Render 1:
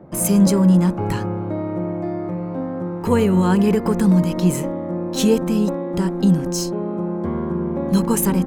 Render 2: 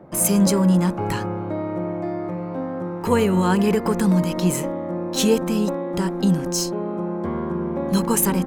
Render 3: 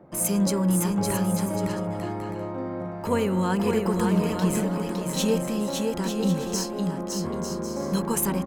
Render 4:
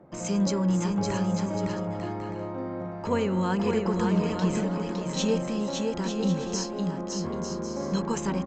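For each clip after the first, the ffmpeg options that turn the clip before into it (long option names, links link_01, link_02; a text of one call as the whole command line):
ffmpeg -i in.wav -af "lowshelf=frequency=410:gain=-6.5,volume=2dB" out.wav
ffmpeg -i in.wav -af "aecho=1:1:560|896|1098|1219|1291:0.631|0.398|0.251|0.158|0.1,volume=-6dB" out.wav
ffmpeg -i in.wav -af "aresample=16000,aresample=44100,volume=-2dB" out.wav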